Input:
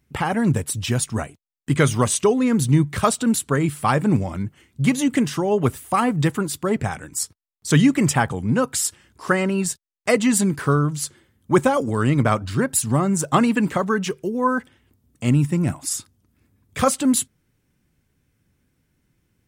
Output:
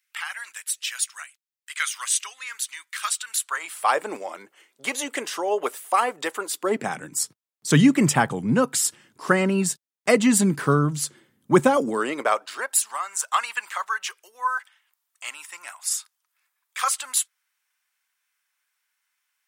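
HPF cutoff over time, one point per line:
HPF 24 dB/oct
3.27 s 1500 Hz
3.97 s 450 Hz
6.51 s 450 Hz
7.02 s 140 Hz
11.76 s 140 Hz
12.07 s 360 Hz
13.02 s 1000 Hz

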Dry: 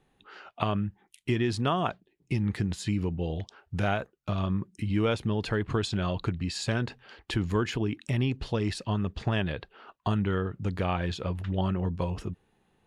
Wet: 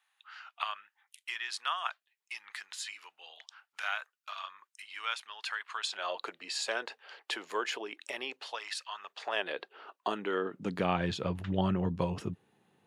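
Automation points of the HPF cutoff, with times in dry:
HPF 24 dB/oct
5.71 s 1100 Hz
6.17 s 490 Hz
8.3 s 490 Hz
8.82 s 1200 Hz
9.62 s 320 Hz
10.31 s 320 Hz
11.01 s 110 Hz

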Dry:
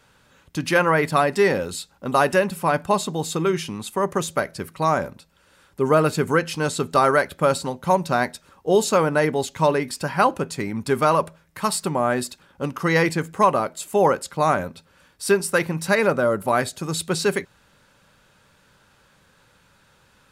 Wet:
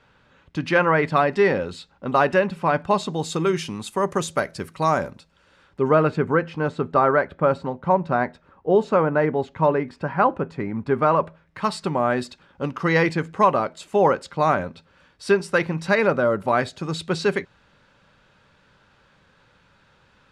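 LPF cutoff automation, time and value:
2.76 s 3400 Hz
3.45 s 8700 Hz
4.99 s 8700 Hz
5.85 s 3300 Hz
6.31 s 1700 Hz
10.96 s 1700 Hz
11.8 s 4300 Hz

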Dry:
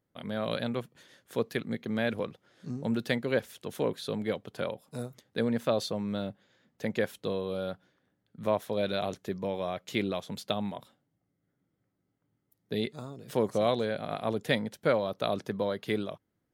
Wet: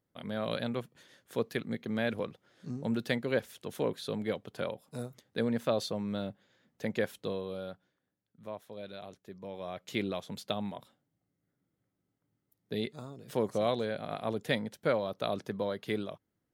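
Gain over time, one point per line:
7.18 s -2 dB
8.43 s -14 dB
9.26 s -14 dB
9.89 s -3 dB

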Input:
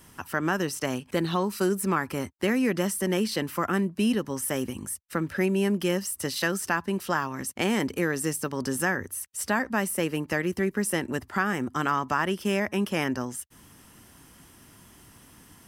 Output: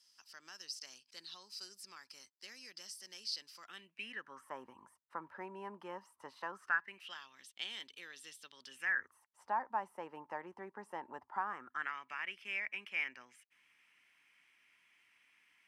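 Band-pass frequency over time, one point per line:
band-pass, Q 6.6
3.55 s 4900 Hz
4.54 s 960 Hz
6.52 s 960 Hz
7.16 s 3500 Hz
8.66 s 3500 Hz
9.2 s 900 Hz
11.41 s 900 Hz
11.97 s 2300 Hz

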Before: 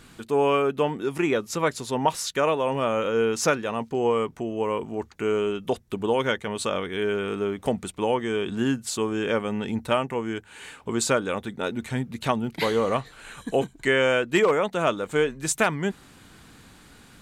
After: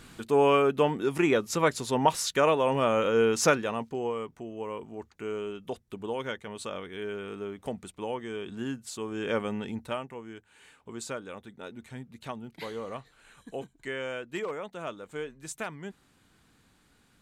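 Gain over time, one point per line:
3.57 s -0.5 dB
4.15 s -10 dB
9.01 s -10 dB
9.41 s -3 dB
10.2 s -14 dB

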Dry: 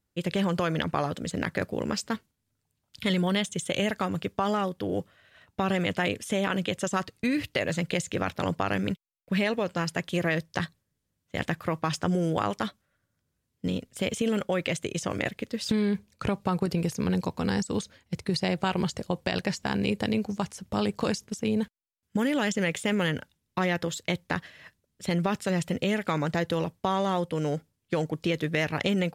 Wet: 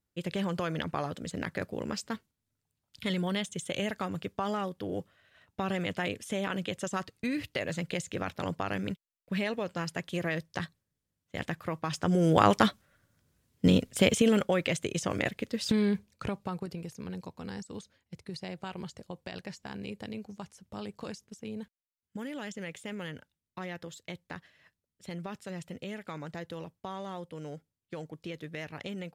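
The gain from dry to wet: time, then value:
11.88 s -5.5 dB
12.47 s +7 dB
13.92 s +7 dB
14.63 s -1 dB
15.88 s -1 dB
16.83 s -13 dB

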